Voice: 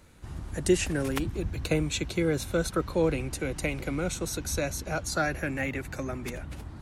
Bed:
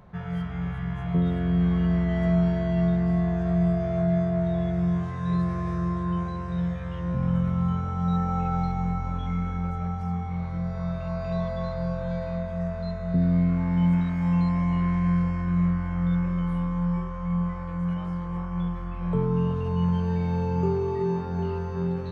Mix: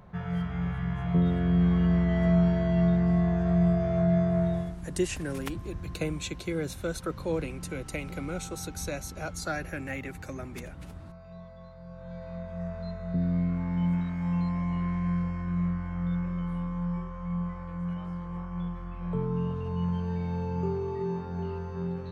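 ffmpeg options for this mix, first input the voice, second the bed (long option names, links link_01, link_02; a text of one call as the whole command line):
ffmpeg -i stem1.wav -i stem2.wav -filter_complex "[0:a]adelay=4300,volume=-5dB[link_01];[1:a]volume=12dB,afade=type=out:start_time=4.45:duration=0.31:silence=0.133352,afade=type=in:start_time=11.84:duration=0.86:silence=0.237137[link_02];[link_01][link_02]amix=inputs=2:normalize=0" out.wav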